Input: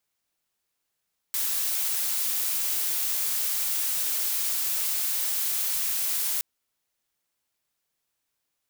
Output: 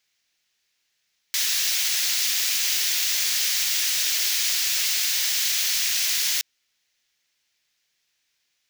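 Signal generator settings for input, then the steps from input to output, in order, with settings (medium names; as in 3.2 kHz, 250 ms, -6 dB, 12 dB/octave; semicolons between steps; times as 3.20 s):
noise blue, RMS -27 dBFS 5.07 s
high-order bell 3.3 kHz +12 dB 2.3 oct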